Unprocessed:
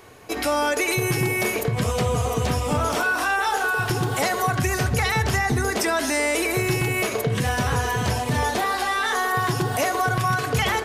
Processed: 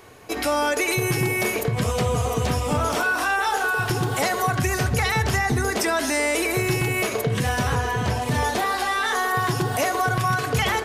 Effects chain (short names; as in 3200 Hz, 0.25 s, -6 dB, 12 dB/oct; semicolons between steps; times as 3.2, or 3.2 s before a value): 7.75–8.22 high shelf 4500 Hz -7.5 dB